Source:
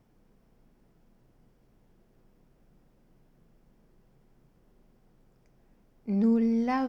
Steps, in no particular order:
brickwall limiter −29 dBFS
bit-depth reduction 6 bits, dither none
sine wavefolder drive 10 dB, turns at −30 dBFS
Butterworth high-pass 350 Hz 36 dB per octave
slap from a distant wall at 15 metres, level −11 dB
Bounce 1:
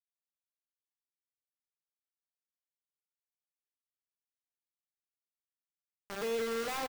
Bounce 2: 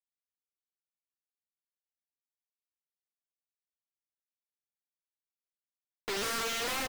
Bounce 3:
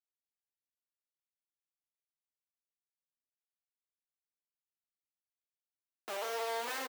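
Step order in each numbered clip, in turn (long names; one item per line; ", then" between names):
Butterworth high-pass, then bit-depth reduction, then sine wavefolder, then slap from a distant wall, then brickwall limiter
bit-depth reduction, then Butterworth high-pass, then brickwall limiter, then slap from a distant wall, then sine wavefolder
bit-depth reduction, then sine wavefolder, then Butterworth high-pass, then brickwall limiter, then slap from a distant wall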